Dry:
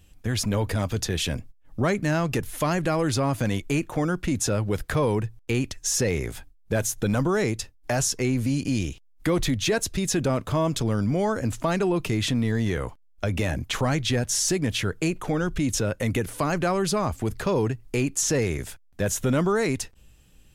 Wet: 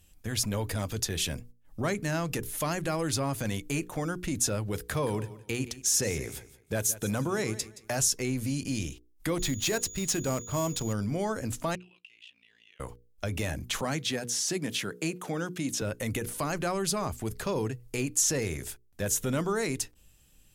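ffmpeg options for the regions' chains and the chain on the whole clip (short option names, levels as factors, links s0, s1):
-filter_complex "[0:a]asettb=1/sr,asplit=3[s0][s1][s2];[s0]atrim=end=4.734[s3];[s1]atrim=start=4.73:end=8.01,asetpts=PTS-STARTPTS,afade=t=in:d=0.004:c=qsin,afade=t=out:st=3.276:d=0.004:c=qsin,highpass=48,aecho=1:1:172|344|516:0.158|0.0412|0.0107,atrim=end_sample=144648[s4];[s2]atrim=start=8.006[s5];[s3][s4]acrossfade=d=0.004:c1=hsin:c2=qsin[s6];[s6][s5]acrossfade=d=0.004:c1=qsin:c2=hsin,asettb=1/sr,asplit=3[s7][s8][s9];[s7]atrim=end=9.394[s10];[s8]atrim=start=9.39:end=10.93,asetpts=PTS-STARTPTS,afade=t=in:d=0.004:c=qsin,afade=t=out:st=1.536:d=0.004:c=qsin,agate=range=0.0224:threshold=0.0355:ratio=3:release=100:detection=peak,aeval=exprs='val(0)+0.0316*sin(2*PI*6800*n/s)':c=same,adynamicsmooth=sensitivity=7:basefreq=1700[s11];[s9]atrim=start=10.926[s12];[s10][s11]acrossfade=d=0.004:c1=hsin:c2=qsin[s13];[s13][s12]acrossfade=d=0.004:c1=qsin:c2=hsin,asettb=1/sr,asplit=3[s14][s15][s16];[s14]atrim=end=11.754[s17];[s15]atrim=start=11.75:end=12.8,asetpts=PTS-STARTPTS,afade=t=in:d=0.004:c=qsin,afade=t=out:st=1.046:d=0.004:c=qsin,bandpass=f=2800:t=q:w=10,aeval=exprs='val(0)*sin(2*PI*29*n/s)':c=same,acompressor=threshold=0.00251:ratio=1.5:attack=3.2:release=140:knee=1:detection=peak[s18];[s16]atrim=start=12.796[s19];[s17][s18]acrossfade=d=0.004:c1=hsin:c2=qsin[s20];[s20][s19]acrossfade=d=0.004:c1=qsin:c2=hsin,asettb=1/sr,asplit=3[s21][s22][s23];[s21]atrim=end=13.814[s24];[s22]atrim=start=13.81:end=15.82,asetpts=PTS-STARTPTS,afade=t=in:d=0.004:c=qsin,afade=t=out:st=2.006:d=0.004:c=qsin,highpass=f=140:w=0.5412,highpass=f=140:w=1.3066,acrossover=split=5500[s25][s26];[s26]acompressor=threshold=0.0178:ratio=4:attack=1:release=60[s27];[s25][s27]amix=inputs=2:normalize=0[s28];[s23]atrim=start=15.816[s29];[s24][s28]acrossfade=d=0.004:c1=hsin:c2=qsin[s30];[s30][s29]acrossfade=d=0.004:c1=qsin:c2=hsin,aemphasis=mode=production:type=cd,bandreject=f=60:t=h:w=6,bandreject=f=120:t=h:w=6,bandreject=f=180:t=h:w=6,bandreject=f=240:t=h:w=6,bandreject=f=300:t=h:w=6,bandreject=f=360:t=h:w=6,bandreject=f=420:t=h:w=6,bandreject=f=480:t=h:w=6,volume=0.501"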